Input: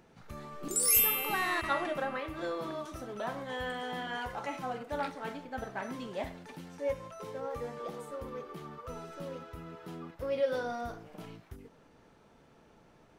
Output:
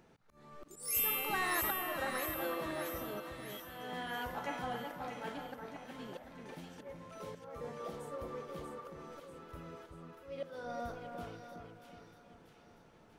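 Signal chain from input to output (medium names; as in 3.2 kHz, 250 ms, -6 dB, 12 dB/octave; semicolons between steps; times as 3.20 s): spectral selection erased 3.31–3.60 s, 240–1800 Hz; slow attack 402 ms; two-band feedback delay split 1.8 kHz, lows 371 ms, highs 638 ms, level -5 dB; trim -3 dB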